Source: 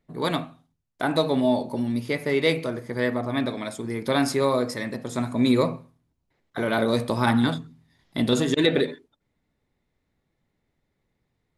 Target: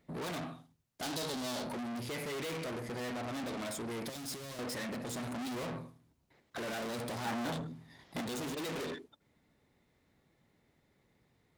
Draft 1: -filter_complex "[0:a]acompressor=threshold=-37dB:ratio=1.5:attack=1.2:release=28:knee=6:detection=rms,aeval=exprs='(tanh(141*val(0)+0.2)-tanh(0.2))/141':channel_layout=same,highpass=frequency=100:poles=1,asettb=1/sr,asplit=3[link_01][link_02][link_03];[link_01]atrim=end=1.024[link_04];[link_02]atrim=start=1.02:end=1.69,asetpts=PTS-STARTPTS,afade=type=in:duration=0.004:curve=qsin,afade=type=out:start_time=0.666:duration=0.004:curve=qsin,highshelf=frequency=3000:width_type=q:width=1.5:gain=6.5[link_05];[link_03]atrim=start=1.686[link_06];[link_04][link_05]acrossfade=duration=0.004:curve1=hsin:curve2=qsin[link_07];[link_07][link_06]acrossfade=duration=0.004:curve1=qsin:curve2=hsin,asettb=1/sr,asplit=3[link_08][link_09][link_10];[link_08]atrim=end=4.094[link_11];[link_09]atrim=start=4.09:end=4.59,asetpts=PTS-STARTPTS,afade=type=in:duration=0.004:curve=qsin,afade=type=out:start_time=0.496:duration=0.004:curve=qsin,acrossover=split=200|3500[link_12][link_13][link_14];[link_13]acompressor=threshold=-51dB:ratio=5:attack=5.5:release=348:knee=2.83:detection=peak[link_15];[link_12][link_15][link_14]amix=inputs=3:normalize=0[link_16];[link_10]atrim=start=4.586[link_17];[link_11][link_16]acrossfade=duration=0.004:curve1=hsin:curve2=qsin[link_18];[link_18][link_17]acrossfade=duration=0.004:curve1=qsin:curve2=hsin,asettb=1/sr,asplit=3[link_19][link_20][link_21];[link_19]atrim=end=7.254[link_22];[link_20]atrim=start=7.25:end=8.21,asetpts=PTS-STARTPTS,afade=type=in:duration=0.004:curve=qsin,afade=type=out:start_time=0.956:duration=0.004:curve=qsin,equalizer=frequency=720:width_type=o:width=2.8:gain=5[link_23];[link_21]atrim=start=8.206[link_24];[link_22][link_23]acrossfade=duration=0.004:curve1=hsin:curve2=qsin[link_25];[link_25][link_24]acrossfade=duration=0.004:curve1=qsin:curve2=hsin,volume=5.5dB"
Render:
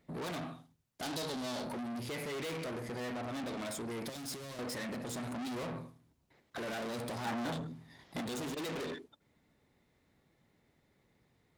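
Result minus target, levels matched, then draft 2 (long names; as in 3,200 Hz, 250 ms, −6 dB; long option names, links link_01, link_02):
downward compressor: peak gain reduction +8.5 dB
-filter_complex "[0:a]aeval=exprs='(tanh(141*val(0)+0.2)-tanh(0.2))/141':channel_layout=same,highpass=frequency=100:poles=1,asettb=1/sr,asplit=3[link_01][link_02][link_03];[link_01]atrim=end=1.024[link_04];[link_02]atrim=start=1.02:end=1.69,asetpts=PTS-STARTPTS,afade=type=in:duration=0.004:curve=qsin,afade=type=out:start_time=0.666:duration=0.004:curve=qsin,highshelf=frequency=3000:width_type=q:width=1.5:gain=6.5[link_05];[link_03]atrim=start=1.686[link_06];[link_04][link_05]acrossfade=duration=0.004:curve1=hsin:curve2=qsin[link_07];[link_07][link_06]acrossfade=duration=0.004:curve1=qsin:curve2=hsin,asettb=1/sr,asplit=3[link_08][link_09][link_10];[link_08]atrim=end=4.094[link_11];[link_09]atrim=start=4.09:end=4.59,asetpts=PTS-STARTPTS,afade=type=in:duration=0.004:curve=qsin,afade=type=out:start_time=0.496:duration=0.004:curve=qsin,acrossover=split=200|3500[link_12][link_13][link_14];[link_13]acompressor=threshold=-51dB:ratio=5:attack=5.5:release=348:knee=2.83:detection=peak[link_15];[link_12][link_15][link_14]amix=inputs=3:normalize=0[link_16];[link_10]atrim=start=4.586[link_17];[link_11][link_16]acrossfade=duration=0.004:curve1=hsin:curve2=qsin[link_18];[link_18][link_17]acrossfade=duration=0.004:curve1=qsin:curve2=hsin,asettb=1/sr,asplit=3[link_19][link_20][link_21];[link_19]atrim=end=7.254[link_22];[link_20]atrim=start=7.25:end=8.21,asetpts=PTS-STARTPTS,afade=type=in:duration=0.004:curve=qsin,afade=type=out:start_time=0.956:duration=0.004:curve=qsin,equalizer=frequency=720:width_type=o:width=2.8:gain=5[link_23];[link_21]atrim=start=8.206[link_24];[link_22][link_23]acrossfade=duration=0.004:curve1=hsin:curve2=qsin[link_25];[link_25][link_24]acrossfade=duration=0.004:curve1=qsin:curve2=hsin,volume=5.5dB"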